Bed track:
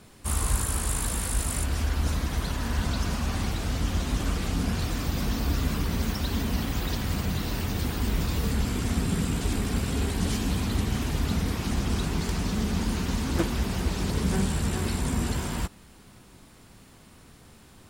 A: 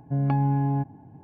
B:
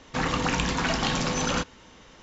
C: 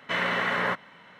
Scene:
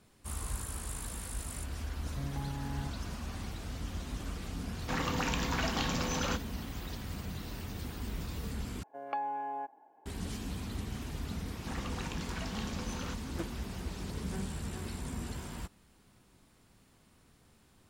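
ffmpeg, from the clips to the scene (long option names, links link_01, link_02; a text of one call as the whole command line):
ffmpeg -i bed.wav -i cue0.wav -i cue1.wav -filter_complex "[1:a]asplit=2[link_01][link_02];[2:a]asplit=2[link_03][link_04];[0:a]volume=-12dB[link_05];[link_01]acompressor=threshold=-26dB:ratio=6:attack=3.2:release=140:knee=1:detection=peak[link_06];[link_02]highpass=frequency=500:width=0.5412,highpass=frequency=500:width=1.3066[link_07];[link_05]asplit=2[link_08][link_09];[link_08]atrim=end=8.834[link_10];[link_07]atrim=end=1.23,asetpts=PTS-STARTPTS,volume=-3dB[link_11];[link_09]atrim=start=10.056[link_12];[link_06]atrim=end=1.23,asetpts=PTS-STARTPTS,volume=-10dB,afade=type=in:duration=0.004:curve=hsin,afade=type=out:start_time=1.226:duration=0.004:curve=hsin,adelay=2060[link_13];[link_03]atrim=end=2.22,asetpts=PTS-STARTPTS,volume=-7.5dB,afade=type=in:duration=0.004:curve=hsin,afade=type=out:start_time=2.216:duration=0.004:curve=hsin,adelay=4740[link_14];[link_04]atrim=end=2.22,asetpts=PTS-STARTPTS,volume=-16.5dB,afade=type=in:duration=0.004:curve=hsin,afade=type=out:start_time=2.216:duration=0.004:curve=hsin,adelay=11520[link_15];[link_10][link_11]acrossfade=duration=0.004:curve1=hsin:curve2=hsin[link_16];[link_16][link_12]acrossfade=duration=0.004:curve1=hsin:curve2=hsin[link_17];[link_17][link_13][link_14][link_15]amix=inputs=4:normalize=0" out.wav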